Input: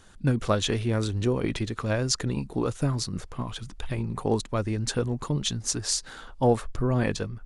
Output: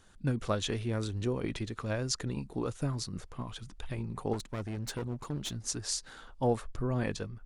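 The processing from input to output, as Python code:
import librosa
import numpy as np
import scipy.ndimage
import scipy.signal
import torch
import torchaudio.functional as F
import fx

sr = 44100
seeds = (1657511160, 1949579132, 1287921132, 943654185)

y = fx.clip_asym(x, sr, top_db=-33.5, bottom_db=-19.0, at=(4.33, 5.56))
y = y * 10.0 ** (-7.0 / 20.0)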